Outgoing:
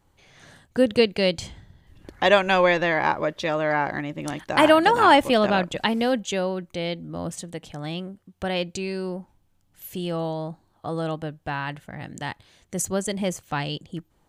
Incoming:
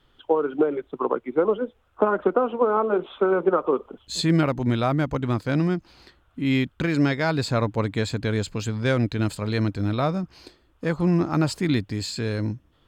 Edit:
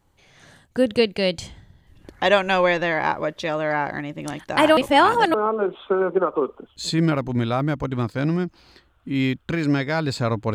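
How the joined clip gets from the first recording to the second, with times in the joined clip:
outgoing
0:04.77–0:05.34: reverse
0:05.34: continue with incoming from 0:02.65

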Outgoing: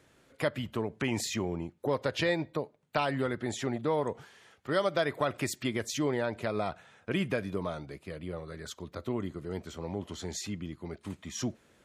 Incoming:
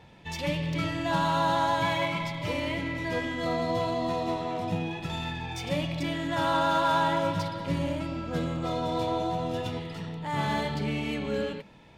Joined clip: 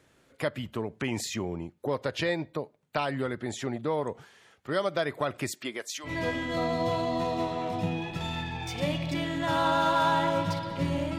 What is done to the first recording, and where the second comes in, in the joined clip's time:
outgoing
0:05.51–0:06.11: high-pass filter 200 Hz → 1,200 Hz
0:06.07: continue with incoming from 0:02.96, crossfade 0.08 s

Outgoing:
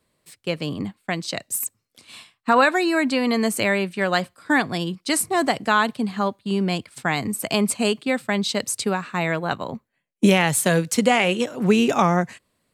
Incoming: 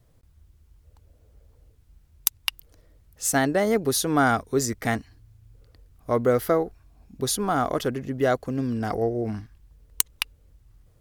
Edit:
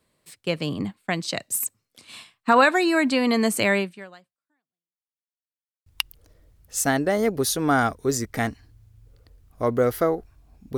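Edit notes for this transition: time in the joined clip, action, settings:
outgoing
0:03.79–0:05.14: fade out exponential
0:05.14–0:05.86: silence
0:05.86: continue with incoming from 0:02.34

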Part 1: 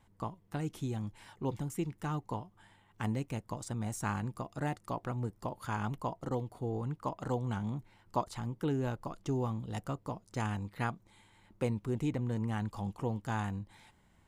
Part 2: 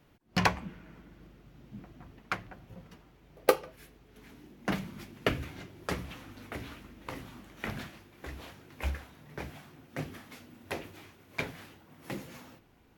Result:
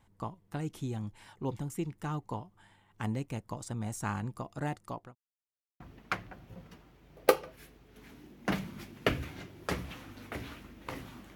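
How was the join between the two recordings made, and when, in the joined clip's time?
part 1
0:04.71–0:05.15: fade out equal-power
0:05.15–0:05.80: silence
0:05.80: continue with part 2 from 0:02.00

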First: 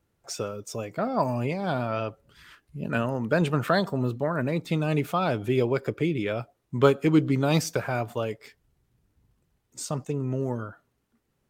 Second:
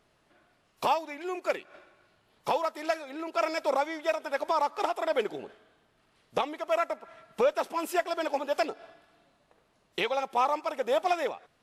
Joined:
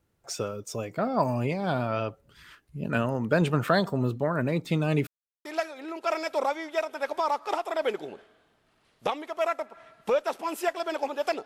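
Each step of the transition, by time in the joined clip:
first
0:05.07–0:05.45: silence
0:05.45: continue with second from 0:02.76

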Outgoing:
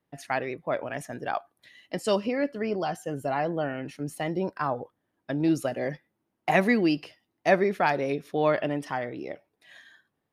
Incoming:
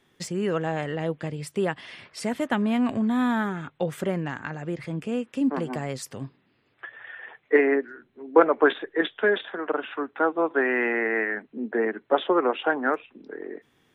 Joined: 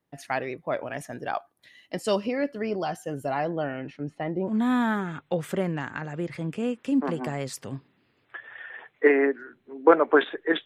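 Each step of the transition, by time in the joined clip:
outgoing
0:03.44–0:04.56: low-pass filter 7,800 Hz → 1,100 Hz
0:04.51: continue with incoming from 0:03.00, crossfade 0.10 s

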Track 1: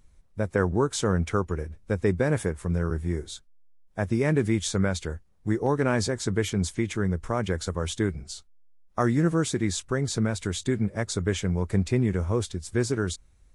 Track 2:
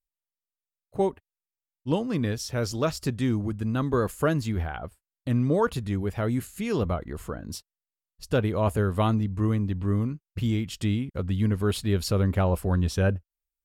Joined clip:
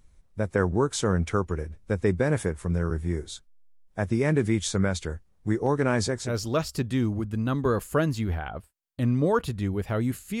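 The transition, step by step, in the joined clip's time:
track 1
0:06.26: continue with track 2 from 0:02.54, crossfade 0.18 s

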